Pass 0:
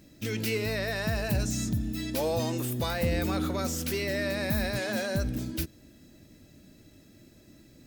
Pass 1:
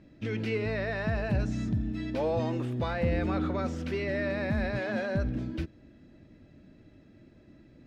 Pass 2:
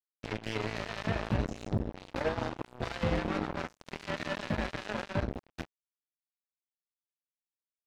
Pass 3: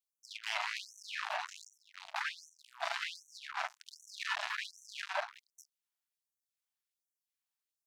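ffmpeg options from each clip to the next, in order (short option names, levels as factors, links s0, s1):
-af "lowpass=2300"
-af "aecho=1:1:19|43:0.501|0.251,acrusher=bits=3:mix=0:aa=0.5,alimiter=limit=0.0794:level=0:latency=1:release=337,volume=1.12"
-af "afftfilt=real='re*gte(b*sr/1024,600*pow(5800/600,0.5+0.5*sin(2*PI*1.3*pts/sr)))':imag='im*gte(b*sr/1024,600*pow(5800/600,0.5+0.5*sin(2*PI*1.3*pts/sr)))':win_size=1024:overlap=0.75,volume=1.5"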